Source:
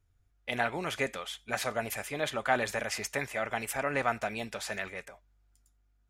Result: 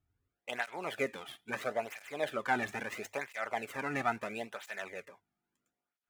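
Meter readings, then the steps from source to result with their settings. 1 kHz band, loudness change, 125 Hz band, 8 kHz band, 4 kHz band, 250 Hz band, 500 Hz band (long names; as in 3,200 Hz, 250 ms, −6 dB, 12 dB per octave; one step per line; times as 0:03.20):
−3.0 dB, −4.0 dB, −7.0 dB, −12.0 dB, −7.5 dB, −3.0 dB, −4.0 dB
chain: running median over 9 samples
mains-hum notches 50/100 Hz
through-zero flanger with one copy inverted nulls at 0.75 Hz, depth 2.1 ms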